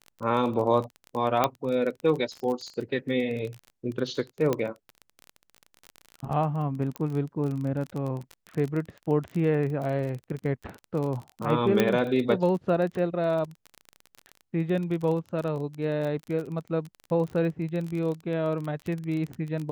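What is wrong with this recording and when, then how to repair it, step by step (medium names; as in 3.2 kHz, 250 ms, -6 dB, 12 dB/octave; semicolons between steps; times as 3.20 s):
crackle 27 per s -31 dBFS
1.44 s: pop -8 dBFS
4.53 s: pop -13 dBFS
6.96 s: pop -18 dBFS
11.80 s: pop -8 dBFS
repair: de-click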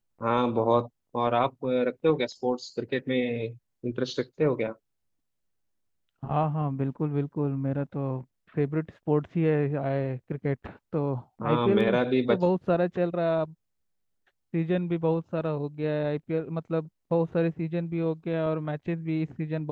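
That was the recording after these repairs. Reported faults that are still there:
11.80 s: pop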